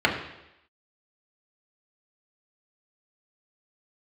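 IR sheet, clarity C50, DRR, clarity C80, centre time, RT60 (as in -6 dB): 7.0 dB, -2.5 dB, 9.0 dB, 27 ms, 0.85 s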